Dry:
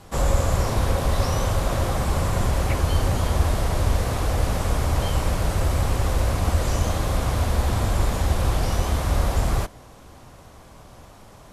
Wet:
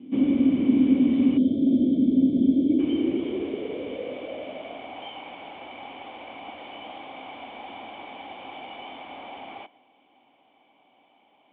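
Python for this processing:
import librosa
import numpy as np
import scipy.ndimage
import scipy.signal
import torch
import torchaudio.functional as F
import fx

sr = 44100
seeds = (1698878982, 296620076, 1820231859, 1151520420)

y = fx.formant_cascade(x, sr, vowel='i')
y = fx.dynamic_eq(y, sr, hz=1300.0, q=0.74, threshold_db=-60.0, ratio=4.0, max_db=4)
y = fx.filter_sweep_highpass(y, sr, from_hz=260.0, to_hz=800.0, start_s=2.47, end_s=5.09, q=5.7)
y = fx.spec_box(y, sr, start_s=1.37, length_s=1.42, low_hz=710.0, high_hz=3100.0, gain_db=-22)
y = y * librosa.db_to_amplitude(7.0)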